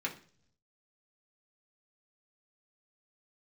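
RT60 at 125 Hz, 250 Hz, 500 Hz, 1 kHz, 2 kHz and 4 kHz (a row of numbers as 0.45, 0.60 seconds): 1.1, 0.80, 0.60, 0.40, 0.45, 0.55 seconds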